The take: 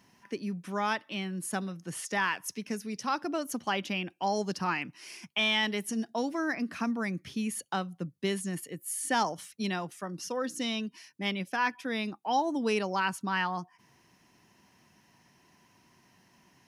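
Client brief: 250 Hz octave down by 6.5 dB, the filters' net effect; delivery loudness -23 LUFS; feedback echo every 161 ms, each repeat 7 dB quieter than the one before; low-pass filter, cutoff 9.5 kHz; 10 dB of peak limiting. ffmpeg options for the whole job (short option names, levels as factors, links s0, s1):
-af "lowpass=9500,equalizer=f=250:t=o:g=-8.5,alimiter=level_in=1.33:limit=0.0631:level=0:latency=1,volume=0.75,aecho=1:1:161|322|483|644|805:0.447|0.201|0.0905|0.0407|0.0183,volume=5.01"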